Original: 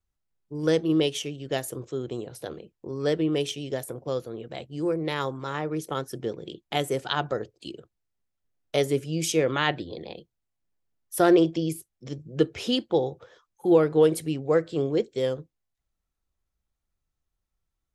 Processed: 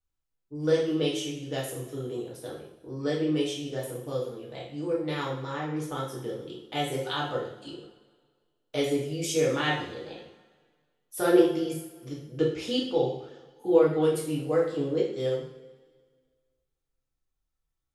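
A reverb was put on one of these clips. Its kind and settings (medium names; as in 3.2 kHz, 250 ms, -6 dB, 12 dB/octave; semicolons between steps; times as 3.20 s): two-slope reverb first 0.58 s, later 1.8 s, from -17 dB, DRR -5 dB; trim -9 dB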